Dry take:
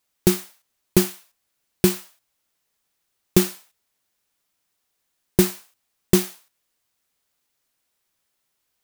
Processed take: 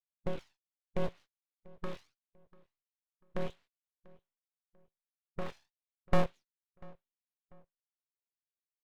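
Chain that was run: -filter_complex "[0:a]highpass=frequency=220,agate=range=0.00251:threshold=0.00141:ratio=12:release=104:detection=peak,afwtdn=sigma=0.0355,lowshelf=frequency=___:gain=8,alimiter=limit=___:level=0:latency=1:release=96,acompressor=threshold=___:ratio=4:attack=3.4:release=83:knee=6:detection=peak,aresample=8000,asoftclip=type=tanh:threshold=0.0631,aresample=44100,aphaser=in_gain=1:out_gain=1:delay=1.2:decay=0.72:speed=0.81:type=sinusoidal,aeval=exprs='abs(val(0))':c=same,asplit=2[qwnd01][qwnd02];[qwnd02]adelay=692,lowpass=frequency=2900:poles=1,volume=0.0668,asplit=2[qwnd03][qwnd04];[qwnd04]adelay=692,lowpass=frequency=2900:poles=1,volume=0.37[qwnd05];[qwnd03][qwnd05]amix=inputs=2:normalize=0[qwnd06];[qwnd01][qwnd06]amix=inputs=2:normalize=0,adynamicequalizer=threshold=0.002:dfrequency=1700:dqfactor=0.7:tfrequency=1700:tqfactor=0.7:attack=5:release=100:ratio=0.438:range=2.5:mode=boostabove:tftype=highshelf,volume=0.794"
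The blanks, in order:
380, 0.376, 0.0562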